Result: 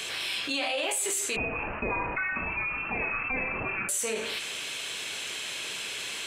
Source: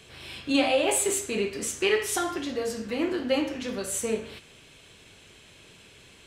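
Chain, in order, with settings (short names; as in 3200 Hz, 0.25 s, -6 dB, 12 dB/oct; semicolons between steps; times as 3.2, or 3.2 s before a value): HPF 1300 Hz 6 dB/oct; 1.36–3.89 inverted band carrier 2900 Hz; limiter -24 dBFS, peak gain reduction 9.5 dB; fast leveller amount 70%; gain +3 dB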